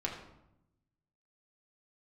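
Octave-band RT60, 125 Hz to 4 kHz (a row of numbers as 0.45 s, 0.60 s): 1.4 s, 1.2 s, 0.85 s, 0.80 s, 0.65 s, 0.55 s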